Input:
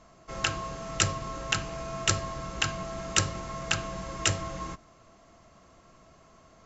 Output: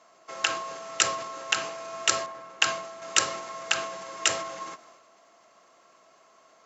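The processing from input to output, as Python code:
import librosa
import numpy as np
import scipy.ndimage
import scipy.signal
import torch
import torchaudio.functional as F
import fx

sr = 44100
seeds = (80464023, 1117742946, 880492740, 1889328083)

y = scipy.signal.sosfilt(scipy.signal.butter(2, 480.0, 'highpass', fs=sr, output='sos'), x)
y = fx.transient(y, sr, attack_db=3, sustain_db=7)
y = fx.band_widen(y, sr, depth_pct=70, at=(2.26, 3.02))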